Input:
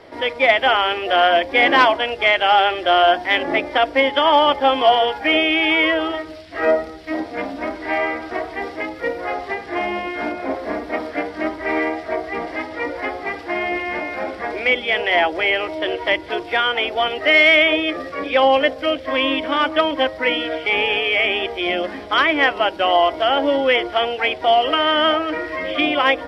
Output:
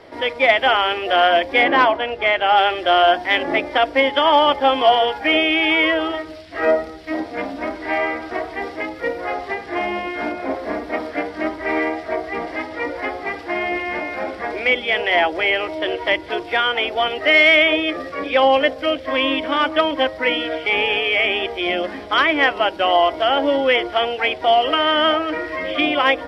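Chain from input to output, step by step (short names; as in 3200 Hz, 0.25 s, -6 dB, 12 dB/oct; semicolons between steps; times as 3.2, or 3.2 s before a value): 1.62–2.55 LPF 1900 Hz -> 2600 Hz 6 dB/oct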